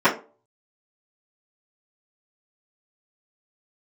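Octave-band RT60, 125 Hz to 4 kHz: 0.35, 0.35, 0.40, 0.30, 0.25, 0.20 seconds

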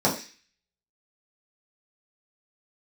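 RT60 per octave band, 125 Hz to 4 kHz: 0.25, 0.35, 0.30, 0.35, 0.60, 0.55 seconds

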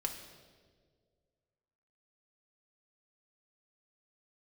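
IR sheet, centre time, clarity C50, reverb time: 29 ms, 7.5 dB, 1.8 s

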